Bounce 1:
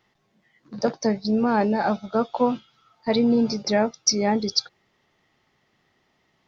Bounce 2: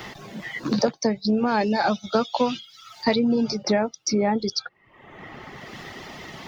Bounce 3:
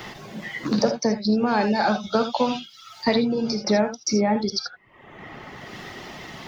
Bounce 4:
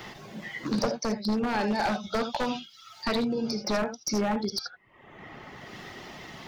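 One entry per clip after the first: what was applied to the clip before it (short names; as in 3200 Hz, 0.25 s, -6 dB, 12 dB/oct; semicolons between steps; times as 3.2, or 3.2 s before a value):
reverb removal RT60 0.59 s; three-band squash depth 100%
non-linear reverb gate 0.1 s rising, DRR 7 dB
one-sided fold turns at -16.5 dBFS; gain -5 dB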